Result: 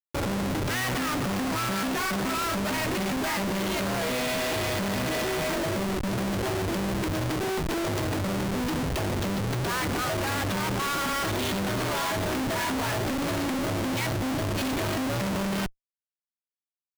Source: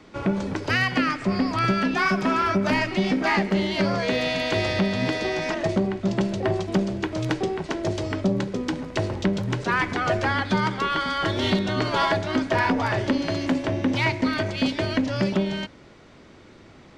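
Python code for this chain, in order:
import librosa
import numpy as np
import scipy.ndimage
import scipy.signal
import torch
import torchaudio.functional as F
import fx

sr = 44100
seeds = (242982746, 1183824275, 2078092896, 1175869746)

y = fx.spec_erase(x, sr, start_s=14.07, length_s=0.51, low_hz=670.0, high_hz=3800.0)
y = fx.tube_stage(y, sr, drive_db=14.0, bias=0.65)
y = fx.schmitt(y, sr, flips_db=-37.5)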